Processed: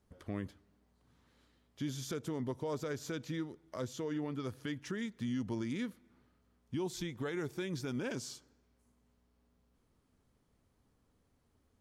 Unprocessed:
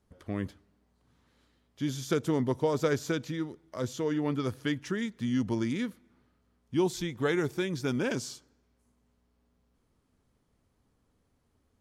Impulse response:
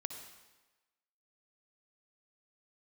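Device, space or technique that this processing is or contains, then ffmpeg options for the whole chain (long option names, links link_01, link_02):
stacked limiters: -af "alimiter=limit=-20.5dB:level=0:latency=1:release=96,alimiter=level_in=3.5dB:limit=-24dB:level=0:latency=1:release=314,volume=-3.5dB,volume=-1.5dB"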